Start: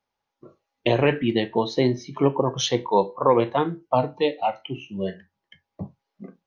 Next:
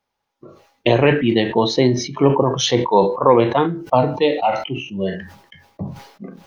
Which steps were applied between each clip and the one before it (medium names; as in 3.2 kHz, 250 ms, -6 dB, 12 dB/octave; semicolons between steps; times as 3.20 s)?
decay stretcher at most 86 dB/s; trim +5 dB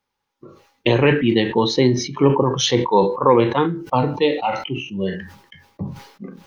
peaking EQ 660 Hz -14.5 dB 0.23 oct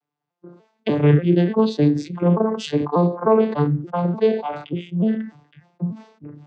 vocoder on a broken chord minor triad, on D3, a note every 295 ms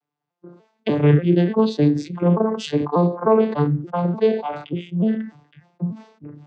no audible change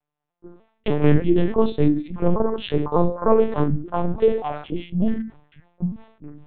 LPC vocoder at 8 kHz pitch kept